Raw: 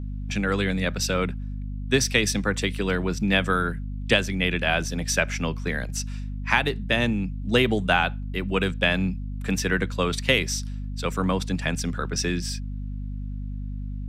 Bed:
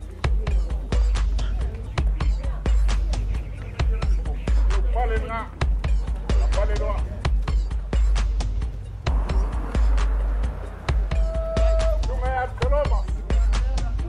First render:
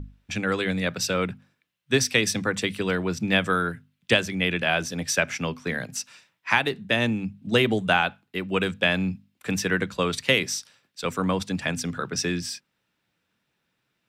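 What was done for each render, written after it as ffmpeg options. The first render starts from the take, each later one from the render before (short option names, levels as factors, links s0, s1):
-af "bandreject=f=50:t=h:w=6,bandreject=f=100:t=h:w=6,bandreject=f=150:t=h:w=6,bandreject=f=200:t=h:w=6,bandreject=f=250:t=h:w=6"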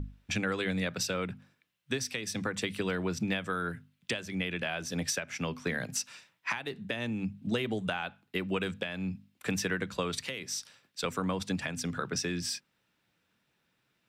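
-af "acompressor=threshold=0.0398:ratio=6,alimiter=limit=0.119:level=0:latency=1:release=383"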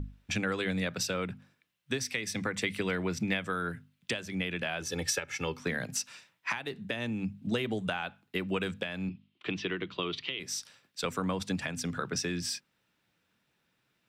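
-filter_complex "[0:a]asettb=1/sr,asplit=3[s0][s1][s2];[s0]atrim=end=2.014[s3];[s1]atrim=start=2.01:end=3.42,asetpts=PTS-STARTPTS,afade=t=in:d=0.004:c=qsin,afade=t=out:st=1.406:d=0.004:c=qsin,equalizer=f=2100:t=o:w=0.28:g=7.5[s4];[s2]atrim=start=3.416[s5];[s3][s4]acrossfade=d=0.004:c1=hsin:c2=qsin[s6];[s6][s5]acrossfade=d=0.004:c1=qsin:c2=hsin,asettb=1/sr,asplit=3[s7][s8][s9];[s7]atrim=end=4.814[s10];[s8]atrim=start=4.81:end=5.6,asetpts=PTS-STARTPTS,afade=t=in:d=0.004:c=qsin,afade=t=out:st=0.786:d=0.004:c=qsin,aecho=1:1:2.3:0.75,atrim=end_sample=34839[s11];[s9]atrim=start=5.596[s12];[s10][s11]acrossfade=d=0.004:c1=hsin:c2=qsin[s13];[s13][s12]acrossfade=d=0.004:c1=qsin:c2=hsin,asettb=1/sr,asplit=3[s14][s15][s16];[s14]atrim=end=9.094[s17];[s15]atrim=start=9.09:end=10.4,asetpts=PTS-STARTPTS,afade=t=in:d=0.004:c=qsin,afade=t=out:st=1.306:d=0.004:c=qsin,highpass=140,equalizer=f=220:t=q:w=4:g=-9,equalizer=f=350:t=q:w=4:g=7,equalizer=f=520:t=q:w=4:g=-9,equalizer=f=810:t=q:w=4:g=-5,equalizer=f=1600:t=q:w=4:g=-8,equalizer=f=3100:t=q:w=4:g=8,lowpass=f=4000:w=0.5412,lowpass=f=4000:w=1.3066[s18];[s16]atrim=start=10.396[s19];[s17][s18]acrossfade=d=0.004:c1=hsin:c2=qsin[s20];[s20][s19]acrossfade=d=0.004:c1=qsin:c2=hsin"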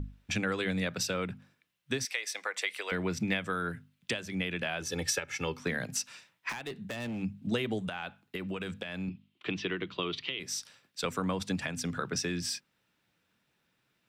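-filter_complex "[0:a]asettb=1/sr,asplit=3[s0][s1][s2];[s0]atrim=end=2.054[s3];[s1]atrim=start=2.05:end=2.92,asetpts=PTS-STARTPTS,afade=t=in:d=0.004:c=qsin,afade=t=out:st=0.866:d=0.004:c=qsin,highpass=f=530:w=0.5412,highpass=f=530:w=1.3066[s4];[s2]atrim=start=2.916[s5];[s3][s4]acrossfade=d=0.004:c1=hsin:c2=qsin[s6];[s6][s5]acrossfade=d=0.004:c1=qsin:c2=hsin,asettb=1/sr,asplit=3[s7][s8][s9];[s7]atrim=end=6.494[s10];[s8]atrim=start=6.49:end=7.22,asetpts=PTS-STARTPTS,afade=t=in:d=0.004:c=qsin,afade=t=out:st=0.726:d=0.004:c=qsin,asoftclip=type=hard:threshold=0.0211[s11];[s9]atrim=start=7.216[s12];[s10][s11]acrossfade=d=0.004:c1=hsin:c2=qsin[s13];[s13][s12]acrossfade=d=0.004:c1=qsin:c2=hsin,asettb=1/sr,asplit=3[s14][s15][s16];[s14]atrim=end=7.794[s17];[s15]atrim=start=7.79:end=9.08,asetpts=PTS-STARTPTS,afade=t=in:d=0.004:c=qsin,afade=t=out:st=1.286:d=0.004:c=qsin,acompressor=threshold=0.0251:ratio=6:attack=3.2:release=140:knee=1:detection=peak[s18];[s16]atrim=start=9.076[s19];[s17][s18]acrossfade=d=0.004:c1=hsin:c2=qsin[s20];[s20][s19]acrossfade=d=0.004:c1=qsin:c2=hsin"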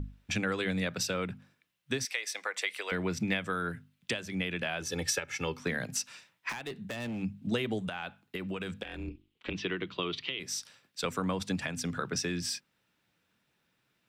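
-filter_complex "[0:a]asplit=3[s0][s1][s2];[s0]afade=t=out:st=8.83:d=0.02[s3];[s1]aeval=exprs='val(0)*sin(2*PI*110*n/s)':c=same,afade=t=in:st=8.83:d=0.02,afade=t=out:st=9.53:d=0.02[s4];[s2]afade=t=in:st=9.53:d=0.02[s5];[s3][s4][s5]amix=inputs=3:normalize=0"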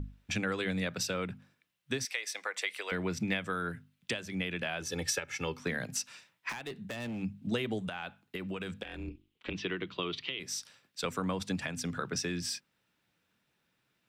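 -af "volume=0.841"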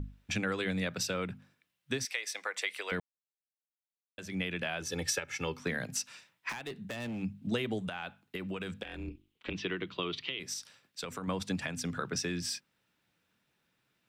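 -filter_complex "[0:a]asettb=1/sr,asplit=3[s0][s1][s2];[s0]atrim=end=10.534[s3];[s1]atrim=start=10.53:end=11.28,asetpts=PTS-STARTPTS,afade=t=in:d=0.004:c=qsin,afade=t=out:st=0.746:d=0.004:c=qsin,acompressor=threshold=0.0178:ratio=6:attack=3.2:release=140:knee=1:detection=peak[s4];[s2]atrim=start=11.276[s5];[s3][s4]acrossfade=d=0.004:c1=hsin:c2=qsin[s6];[s6][s5]acrossfade=d=0.004:c1=qsin:c2=hsin,asplit=3[s7][s8][s9];[s7]atrim=end=3,asetpts=PTS-STARTPTS,afade=t=out:st=2.996:d=0.004:c=hsin[s10];[s8]atrim=start=3:end=4.18,asetpts=PTS-STARTPTS,volume=0[s11];[s9]atrim=start=4.18,asetpts=PTS-STARTPTS,afade=t=in:d=0.004:c=hsin[s12];[s10][s11][s12]concat=n=3:v=0:a=1"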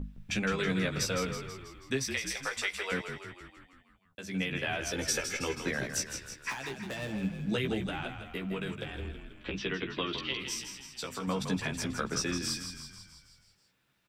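-filter_complex "[0:a]asplit=2[s0][s1];[s1]adelay=15,volume=0.668[s2];[s0][s2]amix=inputs=2:normalize=0,asplit=2[s3][s4];[s4]asplit=7[s5][s6][s7][s8][s9][s10][s11];[s5]adelay=162,afreqshift=-40,volume=0.398[s12];[s6]adelay=324,afreqshift=-80,volume=0.232[s13];[s7]adelay=486,afreqshift=-120,volume=0.133[s14];[s8]adelay=648,afreqshift=-160,volume=0.0776[s15];[s9]adelay=810,afreqshift=-200,volume=0.0452[s16];[s10]adelay=972,afreqshift=-240,volume=0.026[s17];[s11]adelay=1134,afreqshift=-280,volume=0.0151[s18];[s12][s13][s14][s15][s16][s17][s18]amix=inputs=7:normalize=0[s19];[s3][s19]amix=inputs=2:normalize=0"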